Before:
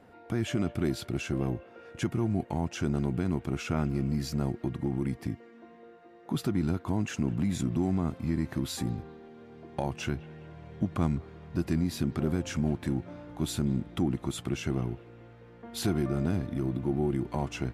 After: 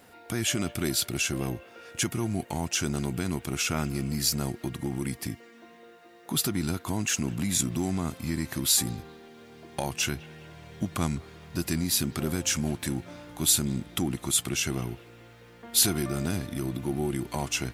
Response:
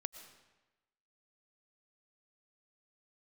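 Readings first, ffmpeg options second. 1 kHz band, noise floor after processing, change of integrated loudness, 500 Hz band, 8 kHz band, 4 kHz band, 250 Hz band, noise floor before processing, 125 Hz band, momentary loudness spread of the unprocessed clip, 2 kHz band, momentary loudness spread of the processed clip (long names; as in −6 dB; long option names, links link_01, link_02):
+2.0 dB, −52 dBFS, +3.0 dB, −0.5 dB, +17.0 dB, +12.0 dB, −1.0 dB, −53 dBFS, −1.5 dB, 10 LU, +7.0 dB, 13 LU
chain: -af "crystalizer=i=8:c=0,volume=-1.5dB"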